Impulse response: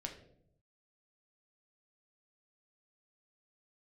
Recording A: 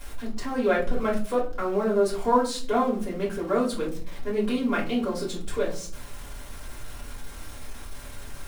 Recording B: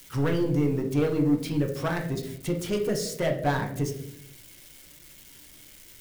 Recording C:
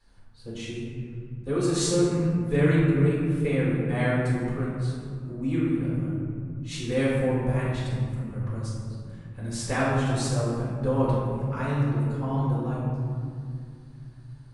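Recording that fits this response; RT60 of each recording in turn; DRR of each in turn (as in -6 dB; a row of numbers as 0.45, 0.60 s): B; 0.45, 0.75, 2.3 s; -5.5, 2.0, -7.5 dB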